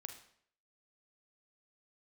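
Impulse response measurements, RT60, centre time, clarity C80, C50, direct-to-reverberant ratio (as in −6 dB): 0.60 s, 17 ms, 12.0 dB, 8.5 dB, 5.0 dB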